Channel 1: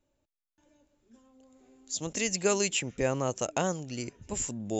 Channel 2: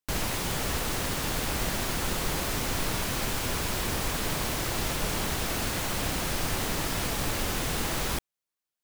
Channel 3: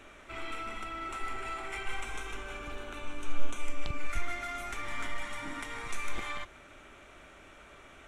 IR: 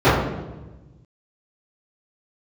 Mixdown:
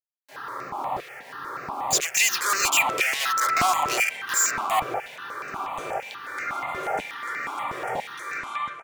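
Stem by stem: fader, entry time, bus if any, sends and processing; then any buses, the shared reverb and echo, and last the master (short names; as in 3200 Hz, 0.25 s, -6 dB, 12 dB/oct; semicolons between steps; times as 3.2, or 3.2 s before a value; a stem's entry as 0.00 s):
-3.5 dB, 0.00 s, no send, small resonant body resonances 730/1100/2400 Hz, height 16 dB; fuzz box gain 42 dB, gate -41 dBFS
-12.5 dB, 0.20 s, send -11.5 dB, tilt shelf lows +10 dB, about 1200 Hz; notch 1500 Hz; pump 121 bpm, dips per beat 1, -10 dB, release 0.139 s
+1.0 dB, 2.25 s, send -20.5 dB, dry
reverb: on, RT60 1.1 s, pre-delay 3 ms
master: LFO high-pass saw down 1 Hz 790–2400 Hz; step phaser 8.3 Hz 230–3300 Hz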